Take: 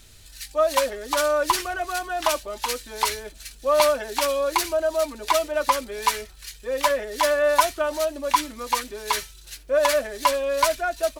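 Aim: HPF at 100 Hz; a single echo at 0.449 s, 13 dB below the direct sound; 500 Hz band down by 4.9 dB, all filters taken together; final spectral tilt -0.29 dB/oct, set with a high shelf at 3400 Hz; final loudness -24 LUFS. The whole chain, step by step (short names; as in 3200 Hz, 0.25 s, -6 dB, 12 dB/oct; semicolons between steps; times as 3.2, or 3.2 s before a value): HPF 100 Hz; bell 500 Hz -6.5 dB; high shelf 3400 Hz +7 dB; echo 0.449 s -13 dB; gain -0.5 dB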